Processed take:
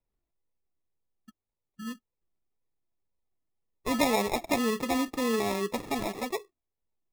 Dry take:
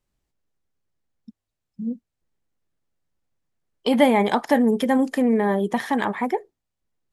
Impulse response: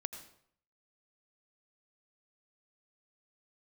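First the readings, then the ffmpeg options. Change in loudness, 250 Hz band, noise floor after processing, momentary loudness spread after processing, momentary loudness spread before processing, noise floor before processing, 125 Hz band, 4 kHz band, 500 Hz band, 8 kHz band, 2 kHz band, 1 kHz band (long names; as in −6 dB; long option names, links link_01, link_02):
−8.0 dB, −10.5 dB, below −85 dBFS, 15 LU, 14 LU, −83 dBFS, can't be measured, −2.5 dB, −8.5 dB, +5.5 dB, −6.5 dB, −8.0 dB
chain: -af "acrusher=samples=29:mix=1:aa=0.000001,flanger=delay=1.9:depth=1.2:regen=54:speed=1.9:shape=triangular,volume=-4dB"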